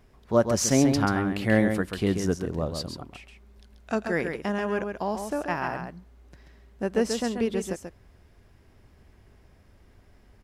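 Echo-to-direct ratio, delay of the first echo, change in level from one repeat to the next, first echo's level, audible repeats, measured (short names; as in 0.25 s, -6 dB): -6.5 dB, 0.135 s, no steady repeat, -6.5 dB, 1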